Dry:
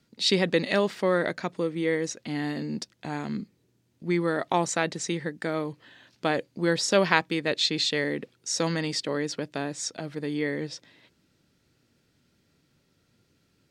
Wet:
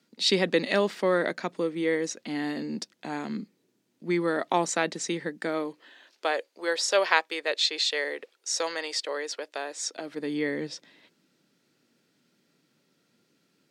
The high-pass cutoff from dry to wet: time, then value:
high-pass 24 dB/octave
5.44 s 190 Hz
6.34 s 450 Hz
9.67 s 450 Hz
10.35 s 170 Hz

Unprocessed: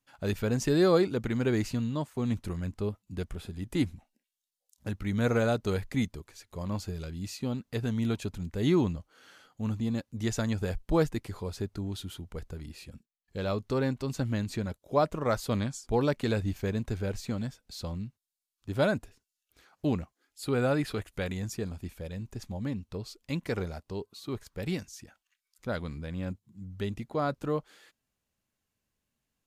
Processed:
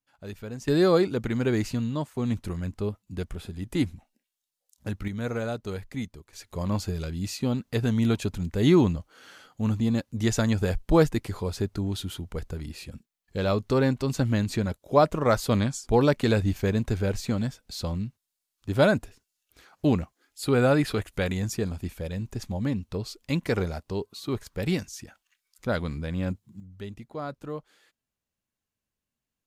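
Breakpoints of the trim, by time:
-8.5 dB
from 0.68 s +2.5 dB
from 5.08 s -4 dB
from 6.33 s +6 dB
from 26.60 s -5 dB

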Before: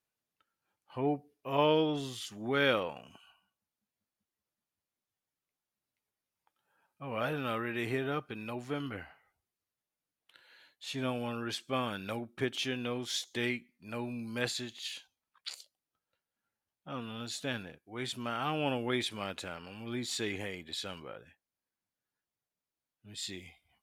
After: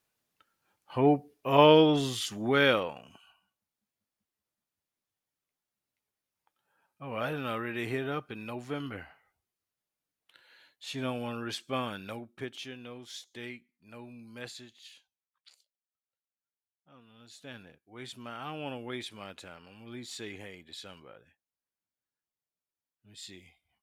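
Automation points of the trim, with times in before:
2.30 s +8 dB
2.99 s +0.5 dB
11.79 s +0.5 dB
12.78 s -9 dB
14.58 s -9 dB
15.55 s -17.5 dB
17.05 s -17.5 dB
17.71 s -6 dB

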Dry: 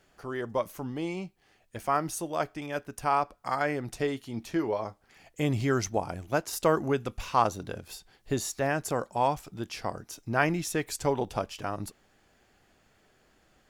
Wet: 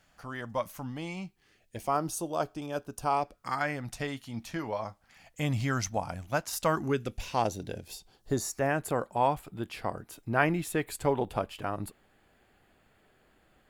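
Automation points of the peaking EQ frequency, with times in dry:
peaking EQ -13.5 dB 0.57 oct
1.17 s 390 Hz
1.99 s 2 kHz
3.05 s 2 kHz
3.71 s 380 Hz
6.66 s 380 Hz
7.16 s 1.2 kHz
7.82 s 1.2 kHz
8.85 s 5.8 kHz

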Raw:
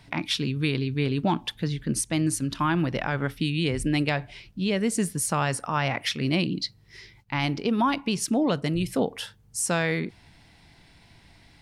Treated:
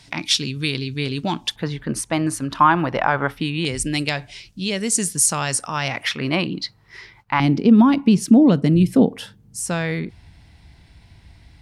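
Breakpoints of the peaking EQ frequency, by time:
peaking EQ +14 dB 1.9 oct
6.5 kHz
from 1.56 s 950 Hz
from 3.65 s 6.9 kHz
from 6.03 s 1.1 kHz
from 7.40 s 220 Hz
from 9.60 s 62 Hz

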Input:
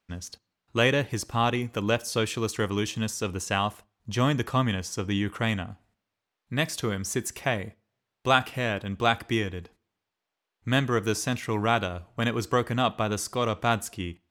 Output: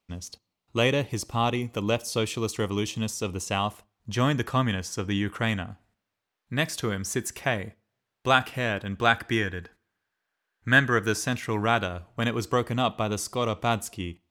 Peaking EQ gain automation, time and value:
peaking EQ 1.6 kHz 0.39 oct
3.49 s -9 dB
4.16 s +2.5 dB
8.72 s +2.5 dB
9.51 s +13.5 dB
10.86 s +13.5 dB
11.32 s +3 dB
11.99 s +3 dB
12.74 s -6.5 dB

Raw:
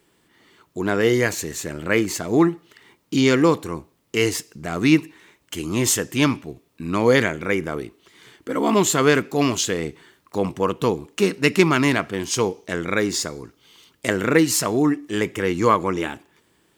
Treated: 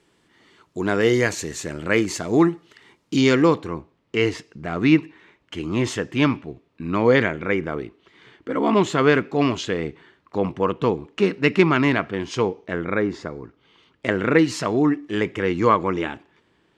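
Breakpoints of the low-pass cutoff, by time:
3.14 s 7.7 kHz
3.76 s 3.1 kHz
12.33 s 3.1 kHz
13.09 s 1.6 kHz
14.54 s 3.7 kHz

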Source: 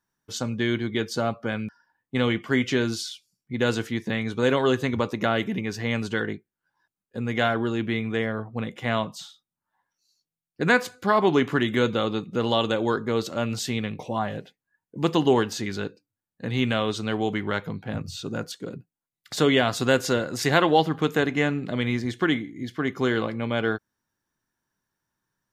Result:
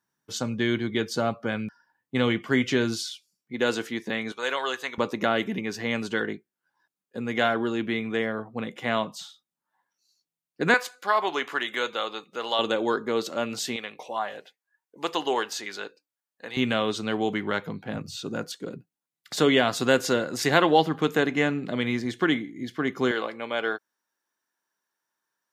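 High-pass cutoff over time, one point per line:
110 Hz
from 3.03 s 260 Hz
from 4.32 s 810 Hz
from 4.98 s 190 Hz
from 10.74 s 690 Hz
from 12.59 s 260 Hz
from 13.76 s 590 Hz
from 16.57 s 160 Hz
from 23.11 s 450 Hz

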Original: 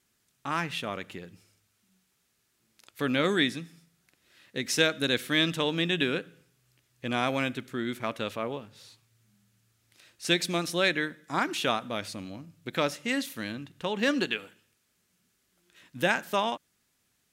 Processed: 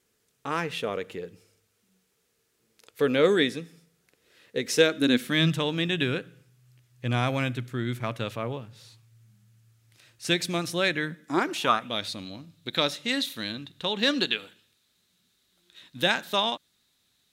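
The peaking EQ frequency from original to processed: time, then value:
peaking EQ +14 dB 0.38 oct
4.78 s 460 Hz
5.63 s 120 Hz
11.01 s 120 Hz
11.59 s 690 Hz
11.95 s 3.8 kHz

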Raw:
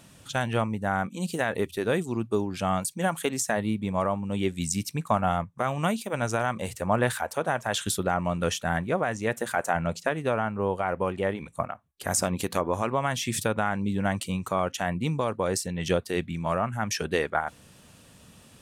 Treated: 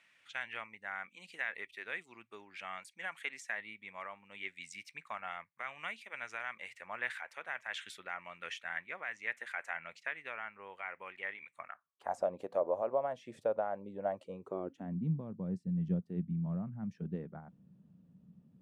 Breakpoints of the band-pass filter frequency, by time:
band-pass filter, Q 4.3
11.64 s 2.1 kHz
12.25 s 590 Hz
14.22 s 590 Hz
15.07 s 180 Hz

